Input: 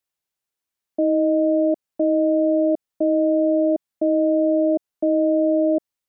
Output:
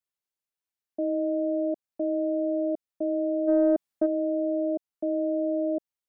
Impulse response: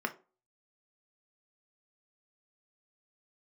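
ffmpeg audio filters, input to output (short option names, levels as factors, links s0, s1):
-filter_complex "[0:a]asplit=3[s0][s1][s2];[s0]afade=t=out:st=3.47:d=0.02[s3];[s1]acontrast=75,afade=t=in:st=3.47:d=0.02,afade=t=out:st=4.05:d=0.02[s4];[s2]afade=t=in:st=4.05:d=0.02[s5];[s3][s4][s5]amix=inputs=3:normalize=0,volume=0.376"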